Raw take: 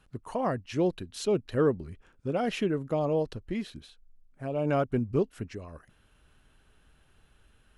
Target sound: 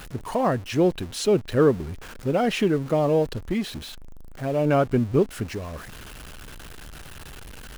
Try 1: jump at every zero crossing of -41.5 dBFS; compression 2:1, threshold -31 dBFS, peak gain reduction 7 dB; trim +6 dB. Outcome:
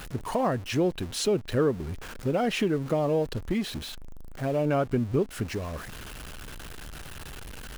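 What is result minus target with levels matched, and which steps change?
compression: peak gain reduction +7 dB
remove: compression 2:1, threshold -31 dBFS, peak gain reduction 7 dB

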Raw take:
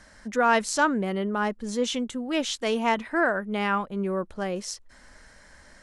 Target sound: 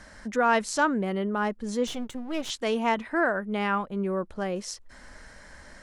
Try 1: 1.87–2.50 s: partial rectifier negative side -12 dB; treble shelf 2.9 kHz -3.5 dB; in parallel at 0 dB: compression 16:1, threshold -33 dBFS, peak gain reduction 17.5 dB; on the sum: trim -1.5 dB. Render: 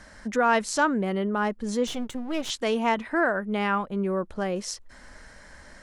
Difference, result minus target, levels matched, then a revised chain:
compression: peak gain reduction -9.5 dB
1.87–2.50 s: partial rectifier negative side -12 dB; treble shelf 2.9 kHz -3.5 dB; in parallel at 0 dB: compression 16:1, threshold -43 dBFS, peak gain reduction 26.5 dB; on the sum: trim -1.5 dB

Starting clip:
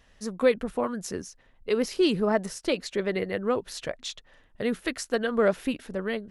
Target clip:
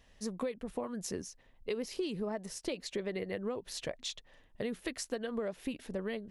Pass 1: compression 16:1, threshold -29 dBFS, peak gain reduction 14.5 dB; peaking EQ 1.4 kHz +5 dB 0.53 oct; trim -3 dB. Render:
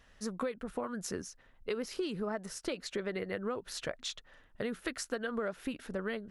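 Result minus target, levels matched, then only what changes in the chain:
1 kHz band +3.0 dB
change: peaking EQ 1.4 kHz -6.5 dB 0.53 oct

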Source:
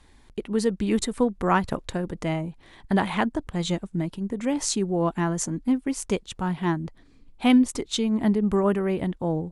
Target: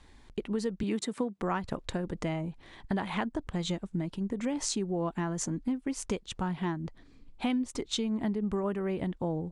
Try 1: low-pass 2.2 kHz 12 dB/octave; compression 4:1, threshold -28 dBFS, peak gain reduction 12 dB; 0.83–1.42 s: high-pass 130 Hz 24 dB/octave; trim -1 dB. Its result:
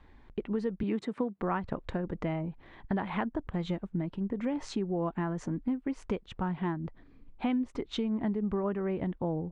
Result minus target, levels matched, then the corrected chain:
8 kHz band -17.0 dB
low-pass 8.3 kHz 12 dB/octave; compression 4:1, threshold -28 dBFS, peak gain reduction 12 dB; 0.83–1.42 s: high-pass 130 Hz 24 dB/octave; trim -1 dB

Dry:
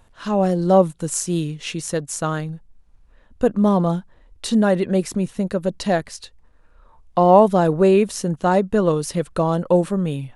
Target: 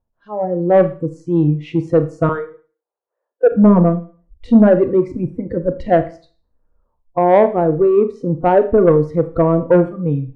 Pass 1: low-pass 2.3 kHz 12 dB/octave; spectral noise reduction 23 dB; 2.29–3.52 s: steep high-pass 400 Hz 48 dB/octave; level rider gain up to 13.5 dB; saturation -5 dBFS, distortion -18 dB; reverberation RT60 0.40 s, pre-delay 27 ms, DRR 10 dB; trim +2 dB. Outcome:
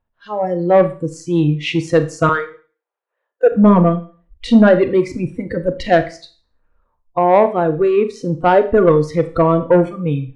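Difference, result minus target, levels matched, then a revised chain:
2 kHz band +7.0 dB
low-pass 780 Hz 12 dB/octave; spectral noise reduction 23 dB; 2.29–3.52 s: steep high-pass 400 Hz 48 dB/octave; level rider gain up to 13.5 dB; saturation -5 dBFS, distortion -18 dB; reverberation RT60 0.40 s, pre-delay 27 ms, DRR 10 dB; trim +2 dB

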